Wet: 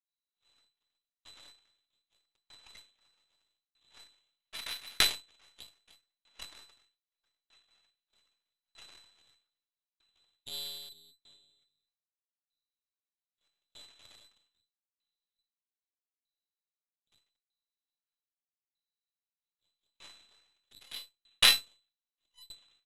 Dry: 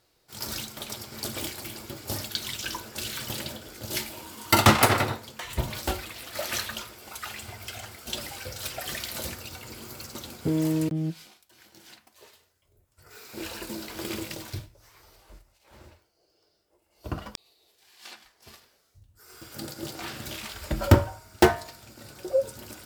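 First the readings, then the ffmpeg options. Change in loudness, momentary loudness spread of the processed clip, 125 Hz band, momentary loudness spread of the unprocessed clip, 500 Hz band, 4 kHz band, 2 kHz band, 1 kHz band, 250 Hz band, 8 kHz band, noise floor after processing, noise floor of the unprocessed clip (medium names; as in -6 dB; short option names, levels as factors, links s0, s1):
0.0 dB, 25 LU, -33.0 dB, 20 LU, -26.0 dB, -0.5 dB, -8.0 dB, -19.5 dB, -31.5 dB, -8.0 dB, under -85 dBFS, -69 dBFS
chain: -filter_complex "[0:a]highshelf=f=3100:g=-4.5,aeval=exprs='val(0)+0.00355*(sin(2*PI*60*n/s)+sin(2*PI*2*60*n/s)/2+sin(2*PI*3*60*n/s)/3+sin(2*PI*4*60*n/s)/4+sin(2*PI*5*60*n/s)/5)':c=same,afreqshift=-33,aecho=1:1:7.4:0.85,acontrast=82,asplit=2[s0][s1];[s1]adelay=752,lowpass=f=1900:p=1,volume=0.106,asplit=2[s2][s3];[s3]adelay=752,lowpass=f=1900:p=1,volume=0.27[s4];[s0][s2][s4]amix=inputs=3:normalize=0,adynamicequalizer=threshold=0.0178:dfrequency=820:dqfactor=0.79:tfrequency=820:tqfactor=0.79:attack=5:release=100:ratio=0.375:range=2.5:mode=boostabove:tftype=bell,aeval=exprs='abs(val(0))':c=same,lowpass=f=3400:t=q:w=0.5098,lowpass=f=3400:t=q:w=0.6013,lowpass=f=3400:t=q:w=0.9,lowpass=f=3400:t=q:w=2.563,afreqshift=-4000,aeval=exprs='1.12*(cos(1*acos(clip(val(0)/1.12,-1,1)))-cos(1*PI/2))+0.316*(cos(3*acos(clip(val(0)/1.12,-1,1)))-cos(3*PI/2))+0.0447*(cos(4*acos(clip(val(0)/1.12,-1,1)))-cos(4*PI/2))+0.0112*(cos(5*acos(clip(val(0)/1.12,-1,1)))-cos(5*PI/2))+0.0282*(cos(7*acos(clip(val(0)/1.12,-1,1)))-cos(7*PI/2))':c=same,agate=range=0.0224:threshold=0.00158:ratio=3:detection=peak,aeval=exprs='val(0)*pow(10,-37*if(lt(mod(0.8*n/s,1),2*abs(0.8)/1000),1-mod(0.8*n/s,1)/(2*abs(0.8)/1000),(mod(0.8*n/s,1)-2*abs(0.8)/1000)/(1-2*abs(0.8)/1000))/20)':c=same,volume=1.41"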